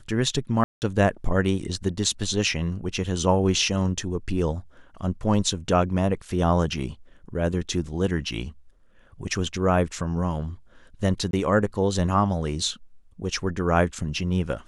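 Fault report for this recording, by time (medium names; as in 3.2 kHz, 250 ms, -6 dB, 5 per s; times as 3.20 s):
0.64–0.82 s: dropout 179 ms
11.31–11.33 s: dropout 22 ms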